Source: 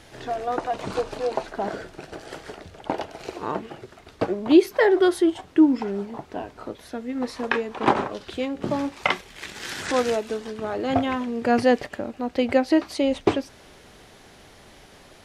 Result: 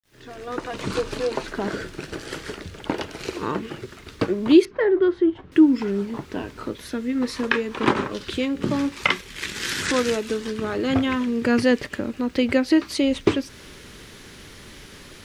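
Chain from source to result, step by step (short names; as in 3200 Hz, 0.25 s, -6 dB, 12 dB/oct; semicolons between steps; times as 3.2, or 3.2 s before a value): opening faded in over 1.03 s; bell 720 Hz -14 dB 0.72 oct; in parallel at +0.5 dB: compressor, threshold -31 dBFS, peak gain reduction 18.5 dB; on the sum: bit-crush 11-bit; 4.65–5.52 tape spacing loss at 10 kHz 42 dB; gain +1.5 dB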